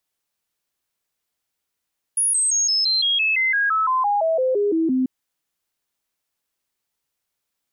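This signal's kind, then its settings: stepped sine 10.4 kHz down, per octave 3, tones 17, 0.17 s, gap 0.00 s -16.5 dBFS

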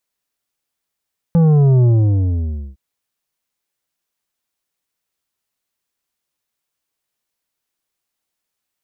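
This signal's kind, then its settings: sub drop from 170 Hz, over 1.41 s, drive 8.5 dB, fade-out 0.92 s, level -9.5 dB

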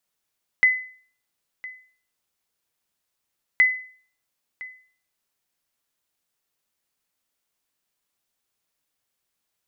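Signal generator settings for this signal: sonar ping 2.02 kHz, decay 0.47 s, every 2.97 s, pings 2, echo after 1.01 s, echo -20 dB -9.5 dBFS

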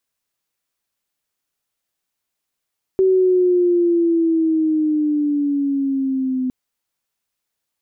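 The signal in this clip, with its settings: gliding synth tone sine, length 3.51 s, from 381 Hz, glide -7 st, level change -7 dB, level -11 dB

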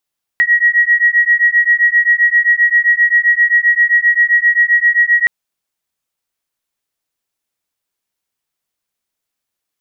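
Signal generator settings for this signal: beating tones 1.9 kHz, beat 7.6 Hz, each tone -11.5 dBFS 4.87 s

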